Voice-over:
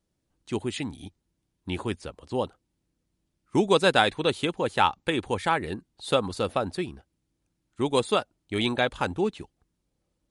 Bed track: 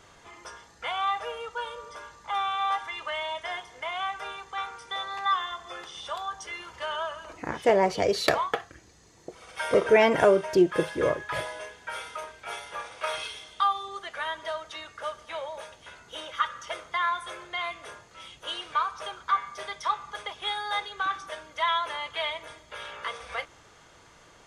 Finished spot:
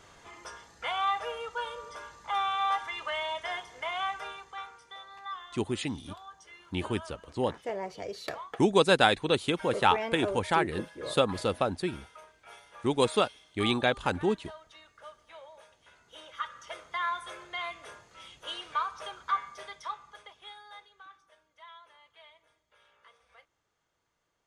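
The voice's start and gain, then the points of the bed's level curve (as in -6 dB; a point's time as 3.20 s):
5.05 s, -1.5 dB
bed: 4.12 s -1 dB
5.03 s -14 dB
15.63 s -14 dB
17.13 s -4 dB
19.38 s -4 dB
21.23 s -25 dB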